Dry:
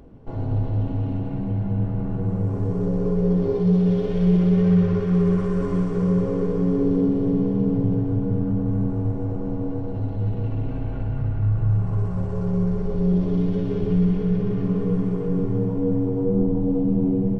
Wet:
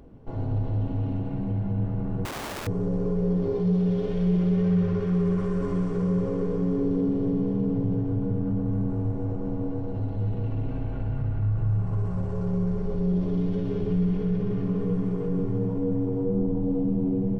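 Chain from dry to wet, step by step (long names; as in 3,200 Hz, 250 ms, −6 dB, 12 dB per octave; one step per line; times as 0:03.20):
in parallel at 0 dB: brickwall limiter −18 dBFS, peak gain reduction 8.5 dB
0:02.25–0:02.67: on the sum: wrap-around overflow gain 21 dB
level −8.5 dB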